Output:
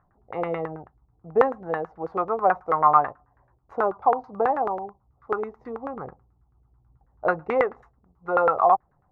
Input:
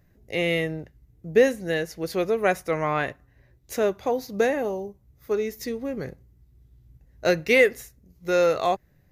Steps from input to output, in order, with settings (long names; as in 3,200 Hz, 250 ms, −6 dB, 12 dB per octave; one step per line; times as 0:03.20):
auto-filter low-pass saw down 9.2 Hz 440–1,700 Hz
flat-topped bell 1,000 Hz +15 dB 1.1 octaves
level −7.5 dB